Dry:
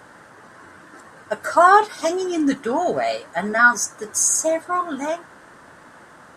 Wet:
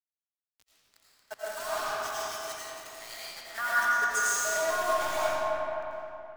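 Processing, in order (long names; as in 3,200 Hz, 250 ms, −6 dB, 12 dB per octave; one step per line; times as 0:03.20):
Bessel high-pass filter 700 Hz, order 8
treble cut that deepens with the level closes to 1,700 Hz, closed at −12 dBFS
0:01.34–0:03.58: first difference
downward compressor 2 to 1, threshold −34 dBFS, peak gain reduction 12.5 dB
bit reduction 6 bits
echo with a time of its own for lows and highs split 2,700 Hz, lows 261 ms, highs 86 ms, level −7 dB
convolution reverb RT60 3.3 s, pre-delay 65 ms, DRR −8 dB
multiband upward and downward expander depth 40%
level −5.5 dB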